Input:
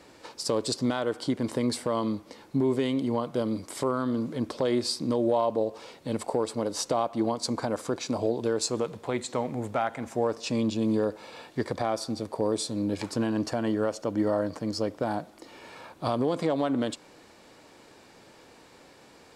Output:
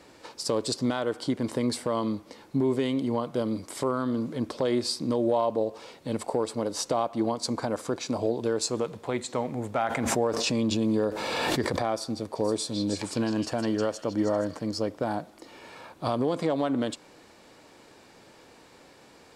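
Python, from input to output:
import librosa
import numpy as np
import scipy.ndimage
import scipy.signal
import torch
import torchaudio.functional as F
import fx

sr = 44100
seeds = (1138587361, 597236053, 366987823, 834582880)

y = fx.pre_swell(x, sr, db_per_s=21.0, at=(9.75, 11.79), fade=0.02)
y = fx.echo_stepped(y, sr, ms=157, hz=3400.0, octaves=0.7, feedback_pct=70, wet_db=-1, at=(12.35, 14.66), fade=0.02)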